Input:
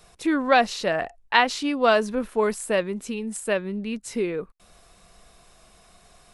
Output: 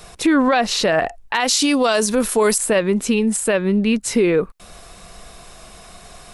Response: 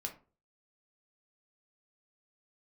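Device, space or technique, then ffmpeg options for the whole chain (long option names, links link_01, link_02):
loud club master: -filter_complex "[0:a]asettb=1/sr,asplit=3[link_01][link_02][link_03];[link_01]atrim=end=1.404[link_04];[link_02]atrim=start=1.4:end=2.58,asetpts=PTS-STARTPTS,afade=type=in:duration=0.004:curve=qsin,afade=type=out:start_time=1.176:duration=0.004:curve=qsin,bass=frequency=250:gain=-3,treble=frequency=4000:gain=15[link_05];[link_03]atrim=start=2.576[link_06];[link_04][link_05]acrossfade=duration=0.004:curve1=hsin:curve2=qsin[link_07];[link_07][link_06]acrossfade=duration=0.004:curve1=qsin:curve2=hsin,acompressor=threshold=-23dB:ratio=2,asoftclip=type=hard:threshold=-10.5dB,alimiter=level_in=20dB:limit=-1dB:release=50:level=0:latency=1,volume=-7dB"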